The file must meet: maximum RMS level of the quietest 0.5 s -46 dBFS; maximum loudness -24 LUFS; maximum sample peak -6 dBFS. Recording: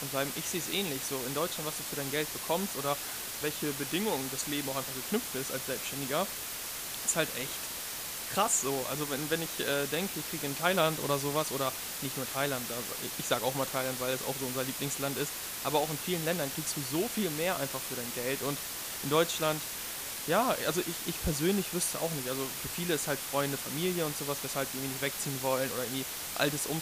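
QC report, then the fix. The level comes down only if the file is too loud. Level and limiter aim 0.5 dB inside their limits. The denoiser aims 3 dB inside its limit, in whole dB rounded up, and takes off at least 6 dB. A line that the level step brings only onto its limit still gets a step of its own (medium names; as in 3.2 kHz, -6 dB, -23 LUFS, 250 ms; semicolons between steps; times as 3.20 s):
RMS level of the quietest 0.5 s -39 dBFS: fail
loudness -32.0 LUFS: pass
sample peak -12.5 dBFS: pass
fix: noise reduction 10 dB, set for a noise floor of -39 dBFS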